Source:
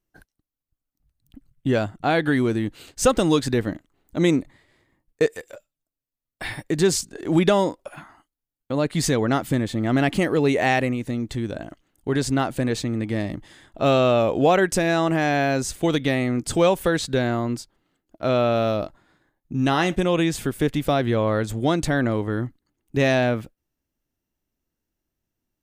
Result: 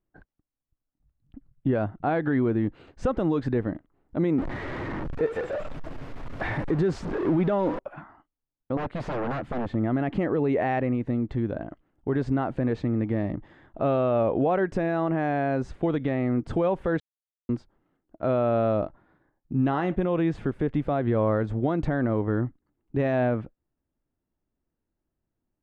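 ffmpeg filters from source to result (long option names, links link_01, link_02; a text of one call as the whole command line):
ffmpeg -i in.wav -filter_complex "[0:a]asettb=1/sr,asplit=3[link_01][link_02][link_03];[link_01]atrim=end=4.384[link_04];[link_02]atrim=start=4.38:end=7.79,asetpts=PTS-STARTPTS,afade=type=in:duration=0.004:curve=qsin,afade=type=out:start_time=3.406:duration=0.004:curve=qsin,aeval=exprs='val(0)+0.5*0.0631*sgn(val(0))':channel_layout=same[link_05];[link_03]atrim=start=7.786[link_06];[link_04][link_05]acrossfade=duration=0.004:curve1=hsin:curve2=qsin[link_07];[link_07][link_06]acrossfade=duration=0.004:curve1=qsin:curve2=hsin,asettb=1/sr,asplit=3[link_08][link_09][link_10];[link_08]atrim=end=8.774[link_11];[link_09]atrim=start=8.77:end=9.75,asetpts=PTS-STARTPTS,afade=type=in:duration=0.004:curve=qsin,afade=type=out:start_time=0.976:duration=0.004:curve=qsin,aeval=exprs='0.0708*(abs(mod(val(0)/0.0708+3,4)-2)-1)':channel_layout=same[link_12];[link_10]atrim=start=9.746[link_13];[link_11][link_12]acrossfade=duration=0.004:curve1=hsin:curve2=qsin[link_14];[link_14][link_13]acrossfade=duration=0.004:curve1=qsin:curve2=hsin,asplit=3[link_15][link_16][link_17];[link_15]atrim=end=17,asetpts=PTS-STARTPTS,afade=type=out:start_time=16.996:duration=0.004:curve=hsin[link_18];[link_16]atrim=start=17:end=17.49,asetpts=PTS-STARTPTS,volume=0[link_19];[link_17]atrim=start=17.49,asetpts=PTS-STARTPTS,afade=type=in:duration=0.004:curve=hsin[link_20];[link_18][link_19][link_20]concat=n=3:v=0:a=1,lowpass=1400,alimiter=limit=-15.5dB:level=0:latency=1:release=88" out.wav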